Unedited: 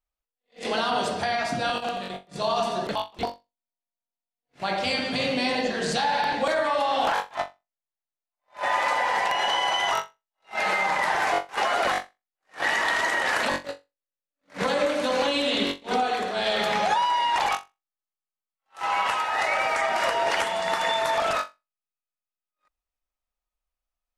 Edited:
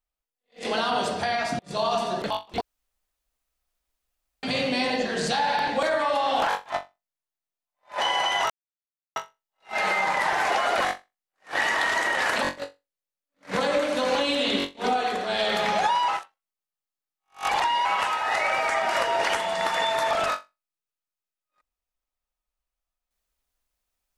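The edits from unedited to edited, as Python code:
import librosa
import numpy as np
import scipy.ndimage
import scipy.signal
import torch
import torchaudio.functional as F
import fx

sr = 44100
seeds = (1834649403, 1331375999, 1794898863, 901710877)

y = fx.edit(x, sr, fx.cut(start_s=1.59, length_s=0.65),
    fx.room_tone_fill(start_s=3.26, length_s=1.82),
    fx.cut(start_s=8.65, length_s=0.83),
    fx.insert_silence(at_s=9.98, length_s=0.66),
    fx.cut(start_s=11.34, length_s=0.25),
    fx.reverse_span(start_s=17.15, length_s=1.77), tone=tone)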